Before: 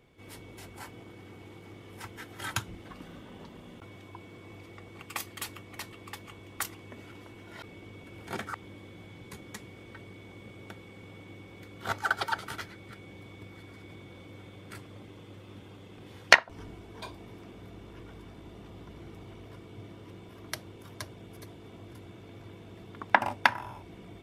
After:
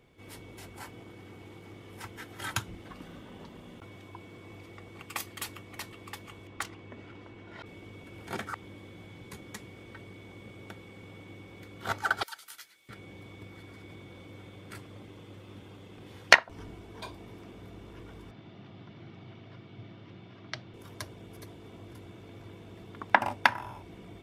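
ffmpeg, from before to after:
-filter_complex "[0:a]asettb=1/sr,asplit=3[a][b][c];[a]atrim=end=6.474[d];[b]atrim=start=6.47:end=7.66,asetpts=PTS-STARTPTS,afade=t=in:d=0.004:c=qsin,afade=t=out:st=1.186:d=0.004:c=qsin,adynamicsmooth=sensitivity=4:basefreq=4.8k[e];[c]atrim=start=7.656[f];[d][e]acrossfade=d=0.004:c1=hsin:c2=qsin[g];[g][f]acrossfade=d=0.004:c1=qsin:c2=hsin,asettb=1/sr,asplit=3[h][i][j];[h]atrim=end=12.234[k];[i]atrim=start=12.23:end=12.89,asetpts=PTS-STARTPTS,afade=t=in:d=0.004:c=qsin,afade=t=out:st=0.656:d=0.004:c=qsin,aderivative[l];[j]atrim=start=12.886[m];[k][l]acrossfade=d=0.004:c1=hsin:c2=qsin[n];[n][m]acrossfade=d=0.004:c1=qsin:c2=hsin,asettb=1/sr,asplit=3[o][p][q];[o]atrim=end=18.314[r];[p]atrim=start=18.31:end=20.74,asetpts=PTS-STARTPTS,afade=t=in:d=0.004:c=qsin,afade=t=out:st=2.426:d=0.004:c=qsin,highpass=f=110:w=0.5412,highpass=f=110:w=1.3066,equalizer=f=120:t=q:w=4:g=6,equalizer=f=310:t=q:w=4:g=-3,equalizer=f=460:t=q:w=4:g=-8,equalizer=f=1k:t=q:w=4:g=-4,lowpass=f=4.9k:w=0.5412,lowpass=f=4.9k:w=1.3066[s];[q]atrim=start=20.736[t];[r][s]acrossfade=d=0.004:c1=hsin:c2=qsin[u];[u][t]acrossfade=d=0.004:c1=qsin:c2=hsin"

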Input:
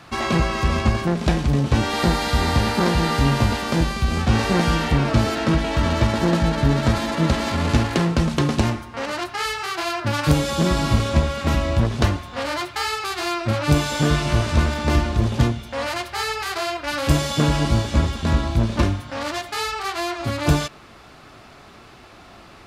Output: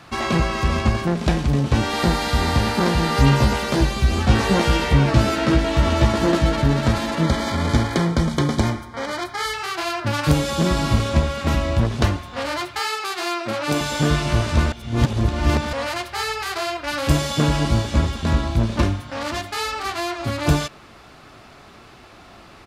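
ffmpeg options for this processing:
-filter_complex "[0:a]asettb=1/sr,asplit=3[a][b][c];[a]atrim=end=3.154[d];[b]atrim=start=3.15:end=6.62,asetpts=PTS-STARTPTS,afade=t=in:d=0.004:c=qsin,afade=t=out:st=3.466:d=0.004:c=qsin,asplit=2[e][f];[f]adelay=15,volume=-3dB[g];[e][g]amix=inputs=2:normalize=0,atrim=end_sample=153027[h];[c]atrim=start=6.616[i];[d][h]acrossfade=d=0.004:c1=hsin:c2=qsin[j];[j][i]acrossfade=d=0.004:c1=qsin:c2=hsin,asettb=1/sr,asplit=3[k][l][m];[k]atrim=end=7.234[n];[l]atrim=start=7.23:end=9.54,asetpts=PTS-STARTPTS,afade=t=in:d=0.004:c=qsin,afade=t=out:st=2.306:d=0.004:c=qsin,asuperstop=centerf=2700:order=20:qfactor=6[o];[m]atrim=start=9.536[p];[n][o]acrossfade=d=0.004:c1=hsin:c2=qsin[q];[q][p]acrossfade=d=0.004:c1=qsin:c2=hsin,asettb=1/sr,asplit=3[r][s][t];[r]atrim=end=12.794[u];[s]atrim=start=12.79:end=13.81,asetpts=PTS-STARTPTS,afade=t=in:d=0.004:c=qsin,afade=t=out:st=1.016:d=0.004:c=qsin,highpass=250[v];[t]atrim=start=13.806[w];[u][v]acrossfade=d=0.004:c1=hsin:c2=qsin[x];[x][w]acrossfade=d=0.004:c1=qsin:c2=hsin,asplit=2[y][z];[z]afade=t=in:st=18.69:d=0.01,afade=t=out:st=19.5:d=0.01,aecho=0:1:530|1060|1590:0.158489|0.0554713|0.0194149[aa];[y][aa]amix=inputs=2:normalize=0,asplit=3[ab][ac][ad];[ab]atrim=end=14.722[ae];[ac]atrim=start=14.718:end=15.732,asetpts=PTS-STARTPTS,areverse[af];[ad]atrim=start=15.728[ag];[ae][af]acrossfade=d=0.004:c1=hsin:c2=hsin[ah];[ah][ag]acrossfade=d=0.004:c1=hsin:c2=hsin"

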